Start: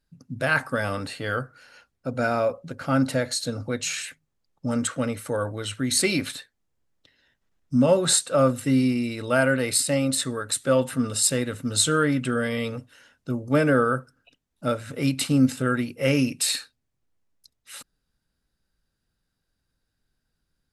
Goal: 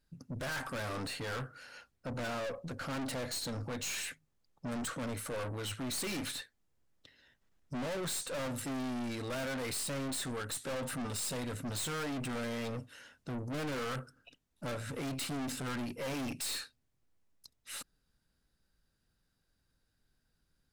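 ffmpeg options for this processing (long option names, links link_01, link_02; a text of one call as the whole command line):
ffmpeg -i in.wav -af "aeval=exprs='(tanh(63.1*val(0)+0.25)-tanh(0.25))/63.1':channel_layout=same" out.wav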